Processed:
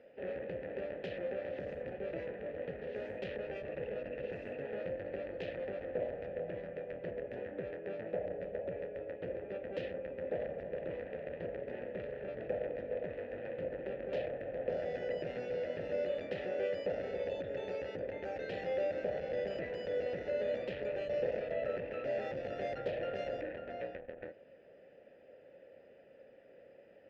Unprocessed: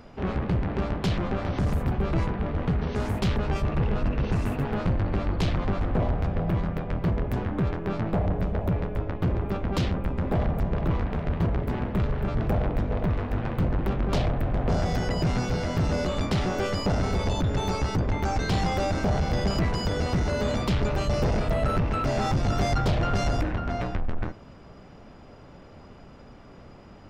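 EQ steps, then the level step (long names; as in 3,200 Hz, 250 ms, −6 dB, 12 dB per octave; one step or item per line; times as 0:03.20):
formant filter e
high-shelf EQ 5,200 Hz −10 dB
+2.0 dB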